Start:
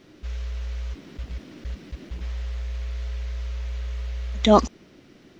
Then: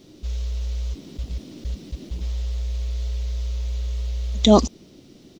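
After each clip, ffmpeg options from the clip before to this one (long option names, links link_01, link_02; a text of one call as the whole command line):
ffmpeg -i in.wav -af "firequalizer=gain_entry='entry(240,0);entry(1600,-13);entry(3600,1);entry(7400,4)':delay=0.05:min_phase=1,volume=4dB" out.wav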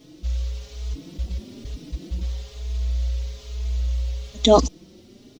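ffmpeg -i in.wav -filter_complex "[0:a]asplit=2[link_01][link_02];[link_02]adelay=4.3,afreqshift=1.1[link_03];[link_01][link_03]amix=inputs=2:normalize=1,volume=3dB" out.wav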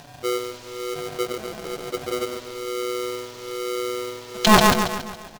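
ffmpeg -i in.wav -af "acompressor=mode=upward:threshold=-41dB:ratio=2.5,aecho=1:1:139|278|417|556|695|834:0.708|0.333|0.156|0.0735|0.0345|0.0162,aeval=exprs='val(0)*sgn(sin(2*PI*430*n/s))':channel_layout=same" out.wav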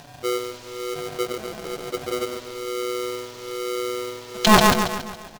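ffmpeg -i in.wav -af anull out.wav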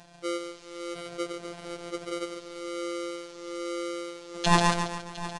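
ffmpeg -i in.wav -af "aecho=1:1:708:0.178,aresample=22050,aresample=44100,afftfilt=real='hypot(re,im)*cos(PI*b)':imag='0':win_size=1024:overlap=0.75,volume=-5dB" out.wav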